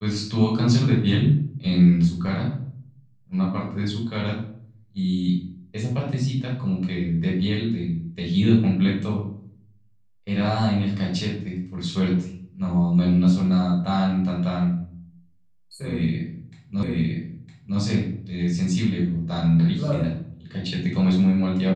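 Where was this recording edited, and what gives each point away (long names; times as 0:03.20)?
0:16.83: the same again, the last 0.96 s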